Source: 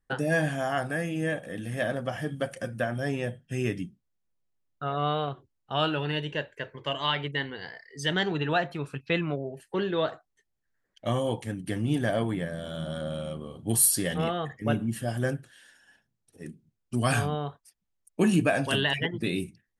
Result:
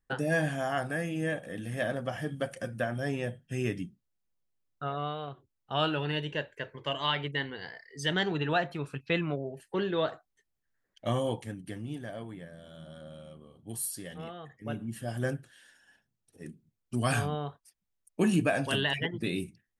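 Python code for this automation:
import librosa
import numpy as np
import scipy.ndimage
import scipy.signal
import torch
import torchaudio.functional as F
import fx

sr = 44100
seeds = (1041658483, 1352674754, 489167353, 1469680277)

y = fx.gain(x, sr, db=fx.line((4.85, -2.5), (5.17, -9.5), (5.73, -2.0), (11.25, -2.0), (12.04, -13.5), (14.41, -13.5), (15.26, -3.0)))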